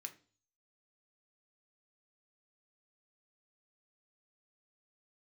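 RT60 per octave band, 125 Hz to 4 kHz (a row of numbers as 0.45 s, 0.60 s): 0.65 s, 0.50 s, 0.45 s, 0.35 s, 0.35 s, 0.45 s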